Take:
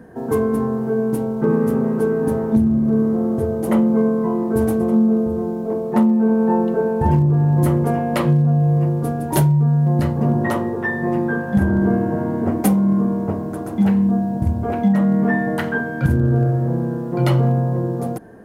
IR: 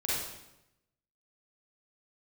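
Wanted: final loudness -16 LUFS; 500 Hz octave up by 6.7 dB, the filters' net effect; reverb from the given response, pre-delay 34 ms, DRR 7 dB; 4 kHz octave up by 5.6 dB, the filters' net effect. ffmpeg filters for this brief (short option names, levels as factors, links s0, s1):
-filter_complex "[0:a]equalizer=f=500:t=o:g=8,equalizer=f=4000:t=o:g=7.5,asplit=2[s0][s1];[1:a]atrim=start_sample=2205,adelay=34[s2];[s1][s2]afir=irnorm=-1:irlink=0,volume=0.2[s3];[s0][s3]amix=inputs=2:normalize=0,volume=0.794"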